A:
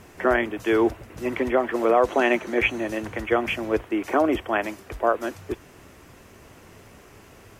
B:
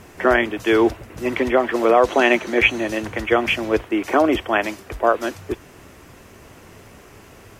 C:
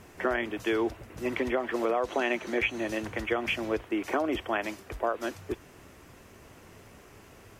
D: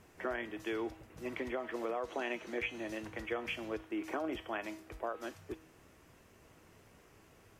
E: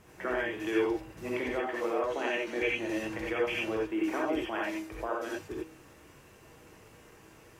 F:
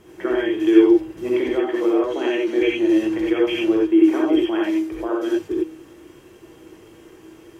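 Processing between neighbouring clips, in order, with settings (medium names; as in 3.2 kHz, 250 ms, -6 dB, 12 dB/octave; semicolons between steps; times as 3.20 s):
dynamic bell 4.2 kHz, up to +6 dB, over -43 dBFS, Q 0.87; trim +4 dB
compression 4:1, threshold -17 dBFS, peak gain reduction 7 dB; trim -7.5 dB
feedback comb 160 Hz, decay 0.57 s, harmonics all, mix 60%; trim -2.5 dB
gated-style reverb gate 110 ms rising, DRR -3.5 dB; trim +2 dB
small resonant body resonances 340/3200 Hz, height 16 dB, ringing for 50 ms; trim +3.5 dB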